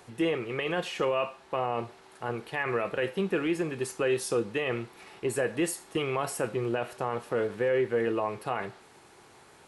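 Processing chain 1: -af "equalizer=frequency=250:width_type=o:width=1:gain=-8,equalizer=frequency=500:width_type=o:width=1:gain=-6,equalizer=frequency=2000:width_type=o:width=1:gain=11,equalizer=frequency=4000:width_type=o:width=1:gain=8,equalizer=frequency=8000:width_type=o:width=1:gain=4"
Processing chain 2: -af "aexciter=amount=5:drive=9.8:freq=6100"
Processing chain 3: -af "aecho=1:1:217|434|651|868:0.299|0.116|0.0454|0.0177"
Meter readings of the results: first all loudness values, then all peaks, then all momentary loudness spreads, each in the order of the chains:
−27.5, −24.5, −30.0 LKFS; −10.0, −3.0, −15.5 dBFS; 10, 19, 8 LU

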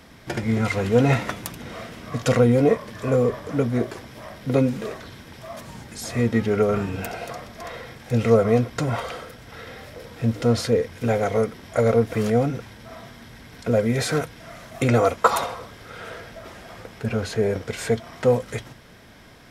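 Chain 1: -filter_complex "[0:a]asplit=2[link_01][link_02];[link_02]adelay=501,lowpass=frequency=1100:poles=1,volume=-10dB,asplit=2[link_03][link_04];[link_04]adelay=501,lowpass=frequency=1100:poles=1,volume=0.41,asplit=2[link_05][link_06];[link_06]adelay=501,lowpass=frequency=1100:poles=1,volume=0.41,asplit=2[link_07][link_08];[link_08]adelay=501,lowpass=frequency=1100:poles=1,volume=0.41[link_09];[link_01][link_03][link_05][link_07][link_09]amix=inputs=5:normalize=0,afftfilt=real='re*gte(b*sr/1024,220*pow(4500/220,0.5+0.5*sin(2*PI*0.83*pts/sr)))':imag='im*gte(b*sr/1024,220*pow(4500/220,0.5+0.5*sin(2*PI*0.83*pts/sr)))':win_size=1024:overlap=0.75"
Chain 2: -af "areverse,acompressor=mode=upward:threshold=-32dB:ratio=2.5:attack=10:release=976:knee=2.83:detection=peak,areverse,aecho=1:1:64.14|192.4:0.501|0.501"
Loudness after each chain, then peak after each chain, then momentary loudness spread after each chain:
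−28.0, −21.5 LKFS; −2.5, −2.5 dBFS; 22, 19 LU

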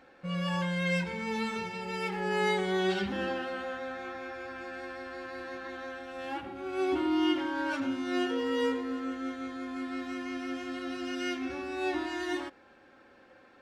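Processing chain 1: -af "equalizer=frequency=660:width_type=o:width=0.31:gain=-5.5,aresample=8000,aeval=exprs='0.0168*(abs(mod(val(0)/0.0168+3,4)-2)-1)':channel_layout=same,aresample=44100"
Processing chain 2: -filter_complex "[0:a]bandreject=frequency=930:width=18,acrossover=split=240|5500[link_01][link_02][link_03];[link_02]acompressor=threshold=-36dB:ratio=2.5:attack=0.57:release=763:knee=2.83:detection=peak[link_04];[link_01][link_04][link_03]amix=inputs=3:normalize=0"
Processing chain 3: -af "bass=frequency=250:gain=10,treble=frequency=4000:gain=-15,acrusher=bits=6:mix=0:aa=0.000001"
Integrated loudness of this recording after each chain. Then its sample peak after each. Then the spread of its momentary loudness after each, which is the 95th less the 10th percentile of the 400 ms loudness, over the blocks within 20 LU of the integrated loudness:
−40.0, −37.5, −30.5 LKFS; −31.0, −24.0, −16.0 dBFS; 3, 8, 13 LU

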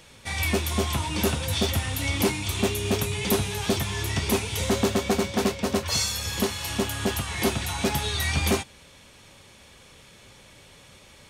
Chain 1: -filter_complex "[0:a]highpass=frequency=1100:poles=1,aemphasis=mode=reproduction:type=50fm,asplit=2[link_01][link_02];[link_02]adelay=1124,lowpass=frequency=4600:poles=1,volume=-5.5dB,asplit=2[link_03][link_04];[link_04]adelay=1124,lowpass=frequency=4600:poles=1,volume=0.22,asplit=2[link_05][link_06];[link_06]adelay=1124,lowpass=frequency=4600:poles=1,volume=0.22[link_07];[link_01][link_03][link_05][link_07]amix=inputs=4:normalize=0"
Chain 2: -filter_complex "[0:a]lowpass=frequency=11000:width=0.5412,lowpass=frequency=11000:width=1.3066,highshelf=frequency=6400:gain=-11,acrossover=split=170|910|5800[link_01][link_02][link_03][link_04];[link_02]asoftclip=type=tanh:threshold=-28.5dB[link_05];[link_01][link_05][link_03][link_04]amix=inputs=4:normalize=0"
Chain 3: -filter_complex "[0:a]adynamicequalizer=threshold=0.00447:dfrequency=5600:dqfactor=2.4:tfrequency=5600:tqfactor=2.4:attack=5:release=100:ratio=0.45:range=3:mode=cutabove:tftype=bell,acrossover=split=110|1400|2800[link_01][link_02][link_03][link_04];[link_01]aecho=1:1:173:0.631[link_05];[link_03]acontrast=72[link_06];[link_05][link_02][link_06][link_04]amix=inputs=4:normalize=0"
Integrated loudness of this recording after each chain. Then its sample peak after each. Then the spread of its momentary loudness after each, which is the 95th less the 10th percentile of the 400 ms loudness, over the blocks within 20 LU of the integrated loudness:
−32.0, −28.5, −25.0 LKFS; −17.5, −13.5, −7.5 dBFS; 12, 3, 3 LU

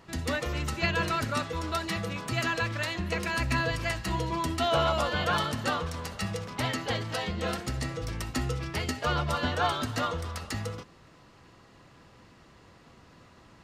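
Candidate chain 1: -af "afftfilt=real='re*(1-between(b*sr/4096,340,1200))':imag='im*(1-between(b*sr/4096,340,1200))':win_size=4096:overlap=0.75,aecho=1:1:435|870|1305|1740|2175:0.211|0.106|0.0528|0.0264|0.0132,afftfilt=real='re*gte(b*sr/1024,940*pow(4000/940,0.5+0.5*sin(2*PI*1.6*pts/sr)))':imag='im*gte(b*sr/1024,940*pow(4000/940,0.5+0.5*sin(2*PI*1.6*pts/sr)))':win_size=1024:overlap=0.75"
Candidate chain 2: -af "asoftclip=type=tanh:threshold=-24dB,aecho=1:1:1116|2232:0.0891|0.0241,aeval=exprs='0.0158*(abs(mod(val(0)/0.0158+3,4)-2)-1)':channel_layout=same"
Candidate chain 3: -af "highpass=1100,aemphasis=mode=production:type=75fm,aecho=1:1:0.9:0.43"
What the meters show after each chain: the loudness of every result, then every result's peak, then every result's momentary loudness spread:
−35.5, −39.5, −29.0 LKFS; −18.5, −36.0, −11.0 dBFS; 9, 16, 5 LU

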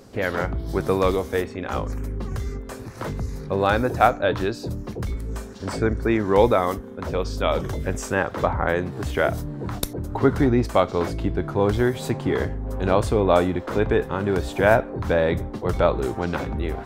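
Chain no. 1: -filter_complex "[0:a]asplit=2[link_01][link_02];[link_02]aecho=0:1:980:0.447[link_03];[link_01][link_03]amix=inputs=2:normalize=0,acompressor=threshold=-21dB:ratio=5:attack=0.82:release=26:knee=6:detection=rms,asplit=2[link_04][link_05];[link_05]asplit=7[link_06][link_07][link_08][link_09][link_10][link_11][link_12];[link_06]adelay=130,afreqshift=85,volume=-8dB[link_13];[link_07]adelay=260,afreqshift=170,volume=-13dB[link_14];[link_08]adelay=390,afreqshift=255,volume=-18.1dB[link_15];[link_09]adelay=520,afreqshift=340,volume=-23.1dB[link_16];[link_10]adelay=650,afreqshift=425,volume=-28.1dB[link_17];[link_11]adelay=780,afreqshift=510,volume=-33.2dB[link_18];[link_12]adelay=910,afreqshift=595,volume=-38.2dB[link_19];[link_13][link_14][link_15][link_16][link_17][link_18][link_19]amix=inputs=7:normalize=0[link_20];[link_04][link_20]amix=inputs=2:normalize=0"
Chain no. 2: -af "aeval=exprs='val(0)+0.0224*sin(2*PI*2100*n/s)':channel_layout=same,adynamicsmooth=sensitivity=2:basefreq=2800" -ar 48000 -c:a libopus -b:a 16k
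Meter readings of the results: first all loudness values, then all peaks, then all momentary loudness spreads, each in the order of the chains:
−27.0, −23.5 LKFS; −12.0, −2.5 dBFS; 3, 11 LU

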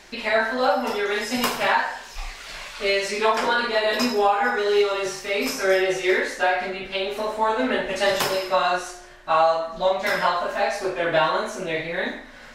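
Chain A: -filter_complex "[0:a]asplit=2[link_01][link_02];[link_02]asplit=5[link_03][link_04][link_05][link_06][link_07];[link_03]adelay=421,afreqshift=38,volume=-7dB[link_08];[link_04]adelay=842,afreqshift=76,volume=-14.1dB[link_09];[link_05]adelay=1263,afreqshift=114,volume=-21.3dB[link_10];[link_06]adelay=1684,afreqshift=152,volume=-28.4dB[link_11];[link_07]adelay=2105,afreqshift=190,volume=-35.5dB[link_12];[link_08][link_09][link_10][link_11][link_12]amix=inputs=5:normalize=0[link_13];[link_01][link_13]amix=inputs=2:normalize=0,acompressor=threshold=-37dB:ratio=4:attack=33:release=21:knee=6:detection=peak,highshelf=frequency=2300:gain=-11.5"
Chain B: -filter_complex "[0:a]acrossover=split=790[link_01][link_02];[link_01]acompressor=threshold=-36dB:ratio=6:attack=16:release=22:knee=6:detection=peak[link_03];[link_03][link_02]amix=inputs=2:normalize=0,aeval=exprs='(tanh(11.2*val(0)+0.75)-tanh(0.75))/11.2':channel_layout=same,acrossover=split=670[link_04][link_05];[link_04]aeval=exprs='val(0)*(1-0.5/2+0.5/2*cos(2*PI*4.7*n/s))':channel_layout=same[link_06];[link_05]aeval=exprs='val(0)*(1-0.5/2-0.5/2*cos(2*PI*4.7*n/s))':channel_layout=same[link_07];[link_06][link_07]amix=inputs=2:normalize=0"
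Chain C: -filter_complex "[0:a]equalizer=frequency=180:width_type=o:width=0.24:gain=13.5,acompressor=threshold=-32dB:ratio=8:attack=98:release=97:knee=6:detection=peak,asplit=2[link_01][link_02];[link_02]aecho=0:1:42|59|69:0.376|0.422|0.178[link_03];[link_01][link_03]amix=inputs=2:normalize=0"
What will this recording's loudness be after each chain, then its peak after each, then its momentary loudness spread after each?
−33.5, −32.0, −28.5 LKFS; −20.0, −16.5, −13.0 dBFS; 2, 6, 4 LU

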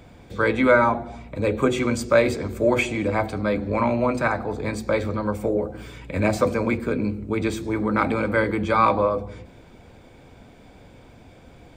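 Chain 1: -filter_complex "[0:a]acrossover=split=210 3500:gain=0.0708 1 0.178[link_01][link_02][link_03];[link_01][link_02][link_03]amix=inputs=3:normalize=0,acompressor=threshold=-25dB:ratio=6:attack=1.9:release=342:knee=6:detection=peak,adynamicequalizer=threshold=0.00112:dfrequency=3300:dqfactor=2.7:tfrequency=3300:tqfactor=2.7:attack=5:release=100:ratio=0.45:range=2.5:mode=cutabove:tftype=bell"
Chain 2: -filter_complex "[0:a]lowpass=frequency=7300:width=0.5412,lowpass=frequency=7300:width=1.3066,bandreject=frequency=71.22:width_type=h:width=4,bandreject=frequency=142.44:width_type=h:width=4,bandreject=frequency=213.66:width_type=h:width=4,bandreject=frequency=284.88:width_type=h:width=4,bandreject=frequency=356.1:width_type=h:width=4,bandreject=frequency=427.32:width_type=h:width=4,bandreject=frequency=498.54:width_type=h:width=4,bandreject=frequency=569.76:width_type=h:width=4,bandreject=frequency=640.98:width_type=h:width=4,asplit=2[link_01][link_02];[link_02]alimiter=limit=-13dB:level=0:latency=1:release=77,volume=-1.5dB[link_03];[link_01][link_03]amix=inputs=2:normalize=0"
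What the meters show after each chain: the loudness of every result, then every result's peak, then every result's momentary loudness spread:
−32.5, −18.5 LKFS; −18.5, −2.5 dBFS; 21, 8 LU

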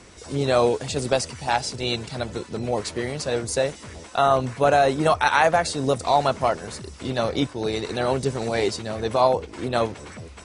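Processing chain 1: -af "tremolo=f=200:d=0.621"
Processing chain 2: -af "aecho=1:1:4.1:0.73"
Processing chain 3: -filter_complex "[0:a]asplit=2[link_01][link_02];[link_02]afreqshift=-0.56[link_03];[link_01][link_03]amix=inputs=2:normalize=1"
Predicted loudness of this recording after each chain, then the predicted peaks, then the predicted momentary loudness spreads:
−26.0, −21.5, −26.5 LKFS; −5.5, −3.0, −7.5 dBFS; 12, 12, 12 LU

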